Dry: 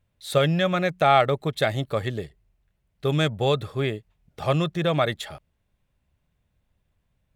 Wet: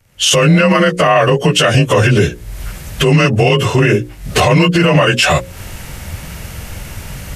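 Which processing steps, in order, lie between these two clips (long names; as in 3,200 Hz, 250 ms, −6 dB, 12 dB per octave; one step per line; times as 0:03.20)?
partials spread apart or drawn together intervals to 91%
camcorder AGC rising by 52 dB per second
high-shelf EQ 2,300 Hz +8.5 dB
mains-hum notches 60/120/180/240/300/360/420/480/540 Hz
boost into a limiter +18 dB
level −1 dB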